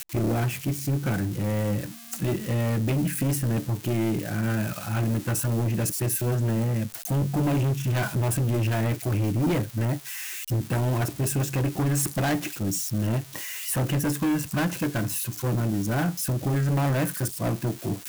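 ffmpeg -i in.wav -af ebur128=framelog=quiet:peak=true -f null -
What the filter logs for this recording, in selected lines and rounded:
Integrated loudness:
  I:         -26.3 LUFS
  Threshold: -36.3 LUFS
Loudness range:
  LRA:         1.4 LU
  Threshold: -46.3 LUFS
  LRA low:   -26.9 LUFS
  LRA high:  -25.5 LUFS
True peak:
  Peak:      -16.5 dBFS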